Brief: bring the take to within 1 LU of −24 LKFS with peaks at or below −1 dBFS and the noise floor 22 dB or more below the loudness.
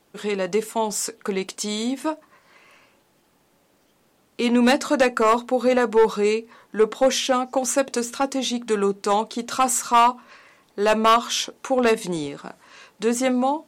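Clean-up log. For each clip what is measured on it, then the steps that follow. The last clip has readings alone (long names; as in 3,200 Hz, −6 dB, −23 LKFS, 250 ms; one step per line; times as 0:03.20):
share of clipped samples 0.5%; peaks flattened at −10.5 dBFS; integrated loudness −21.5 LKFS; sample peak −10.5 dBFS; target loudness −24.0 LKFS
→ clipped peaks rebuilt −10.5 dBFS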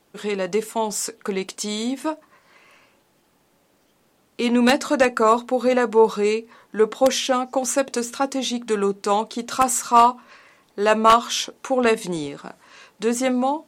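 share of clipped samples 0.0%; integrated loudness −21.0 LKFS; sample peak −1.5 dBFS; target loudness −24.0 LKFS
→ level −3 dB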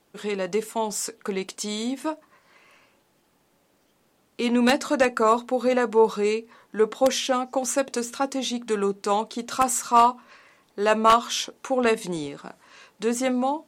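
integrated loudness −24.0 LKFS; sample peak −4.5 dBFS; background noise floor −65 dBFS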